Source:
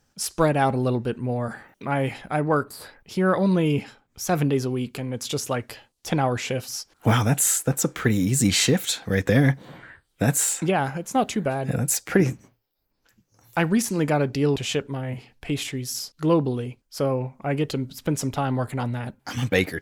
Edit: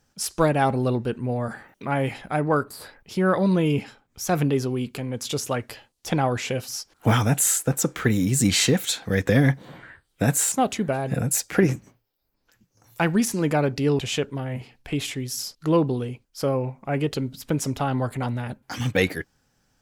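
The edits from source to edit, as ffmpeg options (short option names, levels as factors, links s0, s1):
-filter_complex "[0:a]asplit=2[s0][s1];[s0]atrim=end=10.522[s2];[s1]atrim=start=11.088[s3];[s2][s3]acrossfade=d=0.004:c1=hsin:c2=hsin"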